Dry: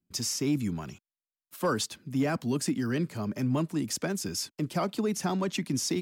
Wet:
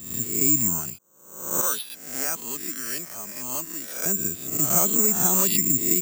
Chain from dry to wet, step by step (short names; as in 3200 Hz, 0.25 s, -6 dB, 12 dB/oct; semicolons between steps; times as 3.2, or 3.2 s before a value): spectral swells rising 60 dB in 0.72 s; 1.61–4.06 HPF 1200 Hz 6 dB/oct; careless resampling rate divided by 6×, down filtered, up zero stuff; gain -1 dB